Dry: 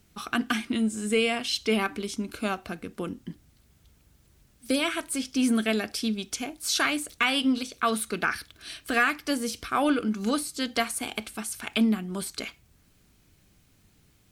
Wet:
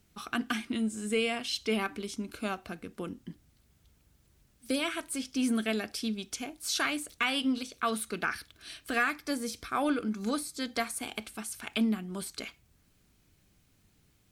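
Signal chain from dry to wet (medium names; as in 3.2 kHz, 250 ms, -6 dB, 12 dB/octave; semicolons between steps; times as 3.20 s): 9.02–10.97 s: band-stop 2.9 kHz, Q 8.7; trim -5 dB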